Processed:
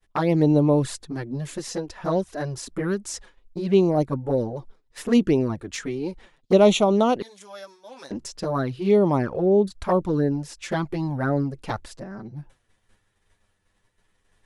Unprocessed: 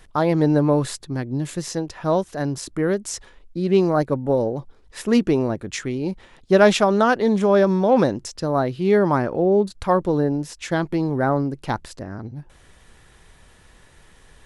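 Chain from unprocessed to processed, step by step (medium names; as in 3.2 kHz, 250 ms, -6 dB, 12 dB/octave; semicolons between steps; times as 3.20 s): 7.22–8.11 s: differentiator; expander -39 dBFS; touch-sensitive flanger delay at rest 10 ms, full sweep at -13.5 dBFS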